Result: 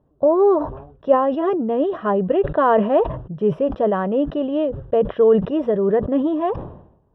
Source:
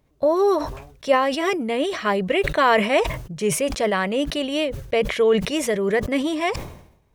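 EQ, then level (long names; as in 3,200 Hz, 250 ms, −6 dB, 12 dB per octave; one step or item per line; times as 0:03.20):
moving average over 20 samples
high-frequency loss of the air 370 metres
low-shelf EQ 85 Hz −9.5 dB
+5.5 dB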